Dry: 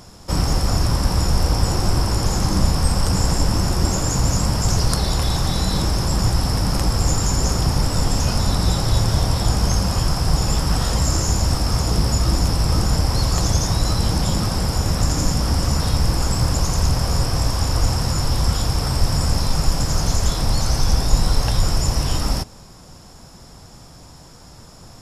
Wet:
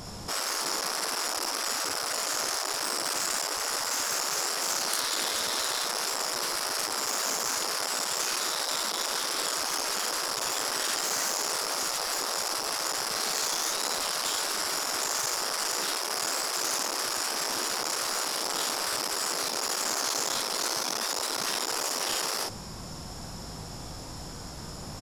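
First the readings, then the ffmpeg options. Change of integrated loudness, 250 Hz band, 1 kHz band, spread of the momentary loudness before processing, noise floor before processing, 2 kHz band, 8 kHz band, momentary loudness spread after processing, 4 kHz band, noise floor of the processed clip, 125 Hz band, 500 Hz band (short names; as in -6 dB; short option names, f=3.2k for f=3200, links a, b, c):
-7.5 dB, -19.0 dB, -5.0 dB, 2 LU, -43 dBFS, 0.0 dB, -1.5 dB, 4 LU, -3.0 dB, -40 dBFS, -31.5 dB, -7.5 dB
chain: -af "aecho=1:1:19|56:0.355|0.631,asoftclip=type=tanh:threshold=-17dB,afftfilt=real='re*lt(hypot(re,im),0.0891)':imag='im*lt(hypot(re,im),0.0891)':win_size=1024:overlap=0.75,volume=2dB"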